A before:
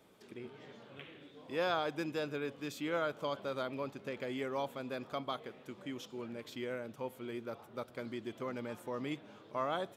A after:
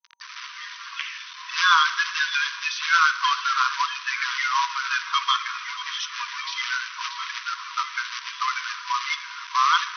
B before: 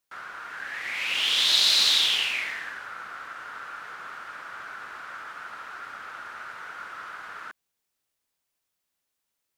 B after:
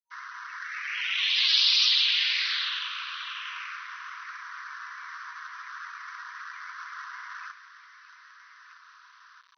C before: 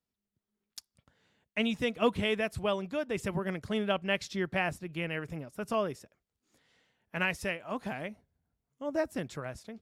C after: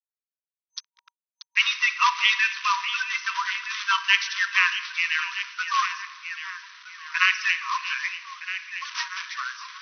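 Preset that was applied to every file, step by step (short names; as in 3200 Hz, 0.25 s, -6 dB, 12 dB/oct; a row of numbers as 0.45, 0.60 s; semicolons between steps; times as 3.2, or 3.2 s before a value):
bin magnitudes rounded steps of 30 dB; delay with a stepping band-pass 0.633 s, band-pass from 3600 Hz, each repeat -0.7 oct, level -8 dB; spring tank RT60 1.2 s, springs 35/53 ms, chirp 45 ms, DRR 11.5 dB; companded quantiser 4-bit; FFT band-pass 950–6200 Hz; match loudness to -24 LUFS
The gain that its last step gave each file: +20.0, -1.0, +12.5 dB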